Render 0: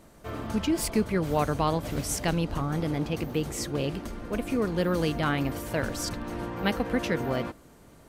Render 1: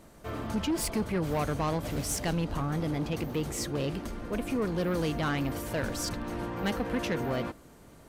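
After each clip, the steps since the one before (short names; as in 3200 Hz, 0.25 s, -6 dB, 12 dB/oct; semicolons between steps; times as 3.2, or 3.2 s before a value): soft clip -23.5 dBFS, distortion -13 dB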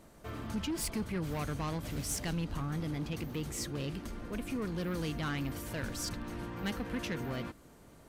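dynamic EQ 620 Hz, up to -7 dB, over -44 dBFS, Q 0.81; gain -3.5 dB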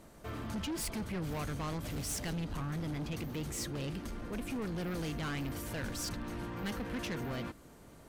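sine folder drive 5 dB, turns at -26 dBFS; gain -7.5 dB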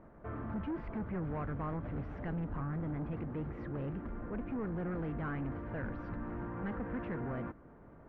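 LPF 1700 Hz 24 dB/oct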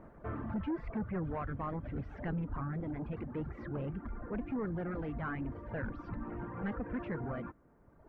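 reverb removal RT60 1.8 s; gain +3 dB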